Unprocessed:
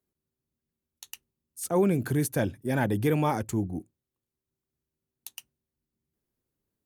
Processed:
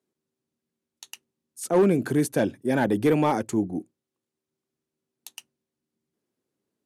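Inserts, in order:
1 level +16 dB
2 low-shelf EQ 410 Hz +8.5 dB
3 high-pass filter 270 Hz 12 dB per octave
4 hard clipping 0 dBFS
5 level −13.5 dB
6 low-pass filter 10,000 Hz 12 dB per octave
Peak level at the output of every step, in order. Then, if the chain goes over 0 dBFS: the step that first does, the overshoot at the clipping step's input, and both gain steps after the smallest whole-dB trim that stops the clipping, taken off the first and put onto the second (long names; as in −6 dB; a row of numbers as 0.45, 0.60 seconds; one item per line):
+2.0, +6.0, +4.0, 0.0, −13.5, −13.0 dBFS
step 1, 4.0 dB
step 1 +12 dB, step 5 −9.5 dB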